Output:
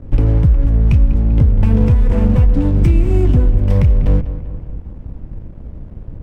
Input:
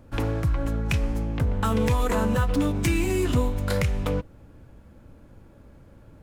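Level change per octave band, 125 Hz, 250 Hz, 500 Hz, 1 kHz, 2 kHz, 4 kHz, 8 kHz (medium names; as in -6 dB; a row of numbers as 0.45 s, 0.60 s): +13.0 dB, +8.0 dB, +3.5 dB, -3.0 dB, -4.5 dB, no reading, under -10 dB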